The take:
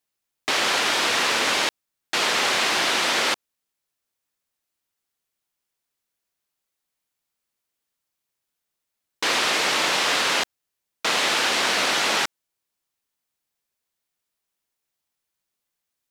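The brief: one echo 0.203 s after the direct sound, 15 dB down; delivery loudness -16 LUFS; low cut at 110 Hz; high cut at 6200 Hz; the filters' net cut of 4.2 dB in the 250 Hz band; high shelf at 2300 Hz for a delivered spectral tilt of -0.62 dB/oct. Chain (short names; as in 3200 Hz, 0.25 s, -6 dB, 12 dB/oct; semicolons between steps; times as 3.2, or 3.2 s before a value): HPF 110 Hz; LPF 6200 Hz; bell 250 Hz -5.5 dB; high shelf 2300 Hz -6 dB; echo 0.203 s -15 dB; gain +8.5 dB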